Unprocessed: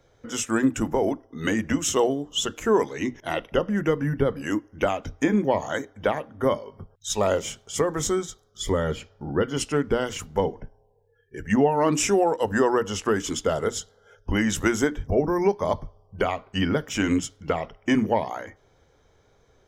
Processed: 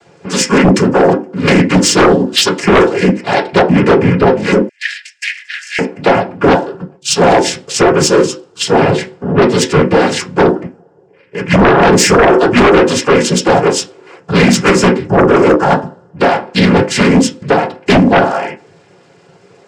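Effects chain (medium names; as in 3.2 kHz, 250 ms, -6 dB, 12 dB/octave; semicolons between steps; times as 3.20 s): noise-vocoded speech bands 8; on a send at -2 dB: peaking EQ 4.3 kHz +8 dB 1.7 oct + reverberation RT60 0.30 s, pre-delay 3 ms; on the sum: sine folder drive 9 dB, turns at -5 dBFS; 4.69–5.79 s: Chebyshev high-pass 1.7 kHz, order 6; trim +2 dB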